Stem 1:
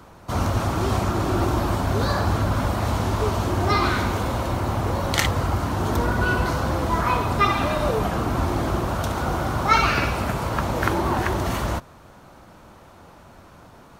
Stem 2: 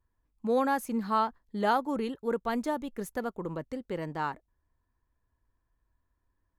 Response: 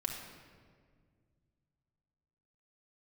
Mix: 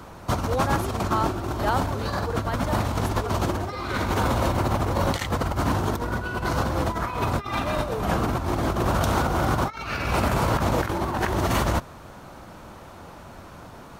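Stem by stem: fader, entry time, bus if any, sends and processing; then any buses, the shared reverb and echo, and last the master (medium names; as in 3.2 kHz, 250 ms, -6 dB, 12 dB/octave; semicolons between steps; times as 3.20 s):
+1.0 dB, 0.00 s, no send, compressor with a negative ratio -25 dBFS, ratio -0.5
+1.0 dB, 0.00 s, no send, high-pass 450 Hz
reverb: none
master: none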